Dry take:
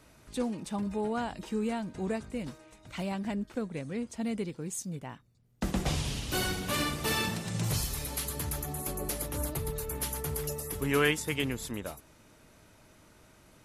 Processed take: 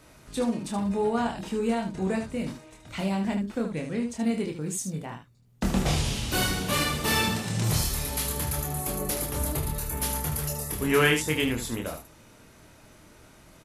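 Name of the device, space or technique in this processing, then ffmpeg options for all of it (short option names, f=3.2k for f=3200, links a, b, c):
slapback doubling: -filter_complex "[0:a]asplit=3[a][b][c];[b]adelay=26,volume=-4dB[d];[c]adelay=76,volume=-7.5dB[e];[a][d][e]amix=inputs=3:normalize=0,volume=3.5dB"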